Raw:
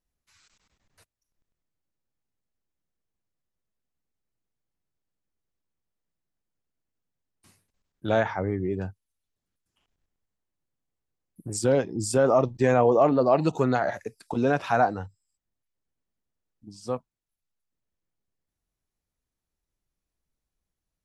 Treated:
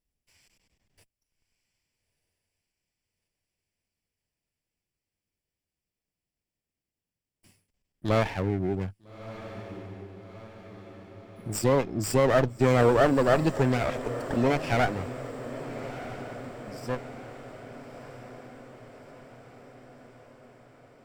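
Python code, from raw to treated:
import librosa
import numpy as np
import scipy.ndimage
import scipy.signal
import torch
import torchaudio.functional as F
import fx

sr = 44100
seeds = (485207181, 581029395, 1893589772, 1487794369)

y = fx.lower_of_two(x, sr, delay_ms=0.38)
y = fx.echo_diffused(y, sr, ms=1290, feedback_pct=58, wet_db=-13)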